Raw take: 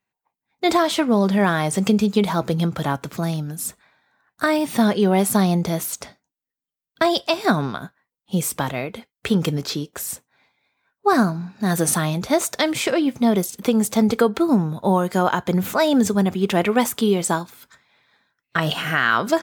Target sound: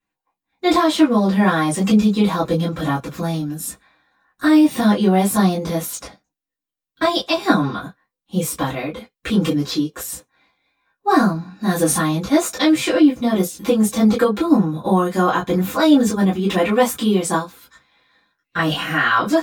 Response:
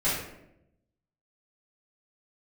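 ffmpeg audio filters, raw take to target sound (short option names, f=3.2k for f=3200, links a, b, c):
-filter_complex "[1:a]atrim=start_sample=2205,atrim=end_sample=3528,asetrate=79380,aresample=44100[a];[0:a][a]afir=irnorm=-1:irlink=0,volume=-3.5dB"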